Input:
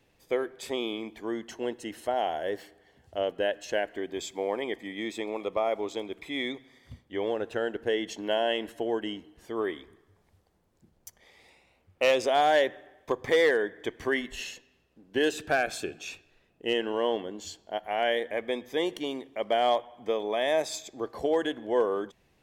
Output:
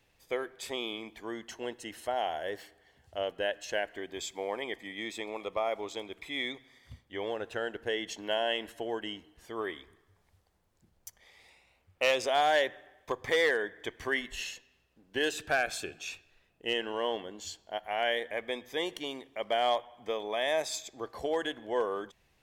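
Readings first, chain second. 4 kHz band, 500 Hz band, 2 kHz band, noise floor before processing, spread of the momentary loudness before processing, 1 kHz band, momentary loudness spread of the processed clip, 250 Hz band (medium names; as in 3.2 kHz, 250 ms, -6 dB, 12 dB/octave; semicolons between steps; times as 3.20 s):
0.0 dB, -5.0 dB, -0.5 dB, -68 dBFS, 12 LU, -3.0 dB, 13 LU, -7.0 dB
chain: peaking EQ 280 Hz -7.5 dB 2.5 oct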